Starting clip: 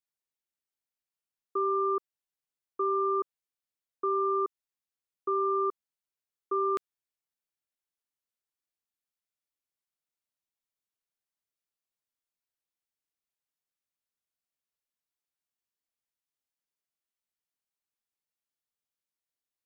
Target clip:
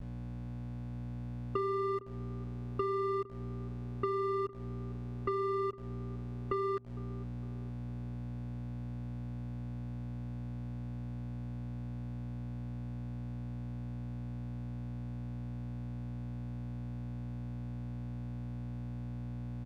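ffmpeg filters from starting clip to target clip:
-filter_complex "[0:a]acontrast=83,aresample=11025,asoftclip=type=tanh:threshold=0.0708,aresample=44100,aeval=exprs='val(0)+0.00562*(sin(2*PI*60*n/s)+sin(2*PI*2*60*n/s)/2+sin(2*PI*3*60*n/s)/3+sin(2*PI*4*60*n/s)/4+sin(2*PI*5*60*n/s)/5)':c=same,adynamicequalizer=threshold=0.00158:dfrequency=240:dqfactor=5.4:tfrequency=240:tqfactor=5.4:attack=5:release=100:ratio=0.375:range=2:mode=boostabove:tftype=bell,aecho=1:1:7.4:0.82,acompressor=threshold=0.0282:ratio=12,aeval=exprs='val(0)*gte(abs(val(0)),0.00422)':c=same,aemphasis=mode=reproduction:type=bsi,asplit=2[s0][s1];[s1]adelay=458,lowpass=f=890:p=1,volume=0.141,asplit=2[s2][s3];[s3]adelay=458,lowpass=f=890:p=1,volume=0.52,asplit=2[s4][s5];[s5]adelay=458,lowpass=f=890:p=1,volume=0.52,asplit=2[s6][s7];[s7]adelay=458,lowpass=f=890:p=1,volume=0.52,asplit=2[s8][s9];[s9]adelay=458,lowpass=f=890:p=1,volume=0.52[s10];[s2][s4][s6][s8][s10]amix=inputs=5:normalize=0[s11];[s0][s11]amix=inputs=2:normalize=0,volume=0.841"

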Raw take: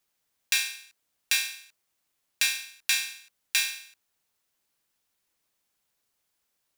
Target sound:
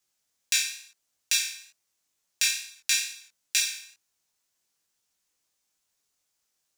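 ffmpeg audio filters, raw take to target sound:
-filter_complex "[0:a]equalizer=f=6500:w=1.1:g=8,acrossover=split=1200|2500|5300[s0][s1][s2][s3];[s0]acompressor=threshold=0.00112:ratio=6[s4];[s4][s1][s2][s3]amix=inputs=4:normalize=0,flanger=delay=18:depth=3.8:speed=2.2"

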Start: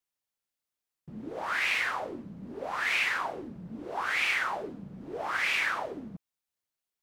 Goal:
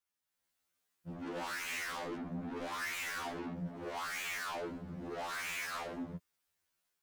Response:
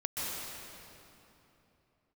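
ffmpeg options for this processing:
-filter_complex "[0:a]equalizer=f=1500:t=o:w=0.77:g=3.5,dynaudnorm=f=240:g=3:m=2.51,asettb=1/sr,asplit=3[s0][s1][s2];[s0]atrim=end=1.224[s3];[s1]atrim=start=1.22:end=3.59,asetpts=PTS-STARTPTS,afade=t=in:d=0.004:c=qsin,afade=t=out:st=2.366:d=0.004:c=qsin,equalizer=f=270:t=o:w=0.93:g=11[s4];[s2]atrim=start=3.586[s5];[s3][s4]acrossfade=d=0.004:c1=hsin:c2=qsin[s6];[s6][s5]acrossfade=d=0.004:c1=qsin:c2=hsin,asoftclip=type=tanh:threshold=0.0141,afftfilt=real='re*2*eq(mod(b,4),0)':imag='im*2*eq(mod(b,4),0)':win_size=2048:overlap=0.75"

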